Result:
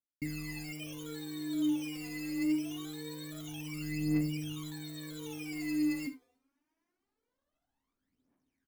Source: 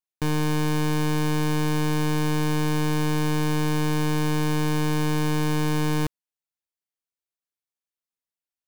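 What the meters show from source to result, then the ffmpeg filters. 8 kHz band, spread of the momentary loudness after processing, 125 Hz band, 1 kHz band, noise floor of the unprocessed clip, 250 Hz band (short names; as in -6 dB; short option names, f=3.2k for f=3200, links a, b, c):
-12.0 dB, 11 LU, -18.0 dB, -26.0 dB, under -85 dBFS, -8.5 dB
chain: -filter_complex "[0:a]equalizer=f=1.8k:t=o:w=2.6:g=-13.5,bandreject=f=403.6:t=h:w=4,bandreject=f=807.2:t=h:w=4,bandreject=f=1.2108k:t=h:w=4,bandreject=f=1.6144k:t=h:w=4,bandreject=f=2.018k:t=h:w=4,bandreject=f=2.4216k:t=h:w=4,bandreject=f=2.8252k:t=h:w=4,bandreject=f=3.2288k:t=h:w=4,bandreject=f=3.6324k:t=h:w=4,bandreject=f=4.036k:t=h:w=4,areverse,acompressor=mode=upward:threshold=-39dB:ratio=2.5,areverse,acrusher=bits=5:mode=log:mix=0:aa=0.000001,asplit=3[a][b][c];[a]bandpass=f=270:t=q:w=8,volume=0dB[d];[b]bandpass=f=2.29k:t=q:w=8,volume=-6dB[e];[c]bandpass=f=3.01k:t=q:w=8,volume=-9dB[f];[d][e][f]amix=inputs=3:normalize=0,acrusher=samples=15:mix=1:aa=0.000001:lfo=1:lforange=9:lforate=0.56,aphaser=in_gain=1:out_gain=1:delay=4.1:decay=0.77:speed=0.24:type=triangular,aecho=1:1:51|74:0.168|0.15"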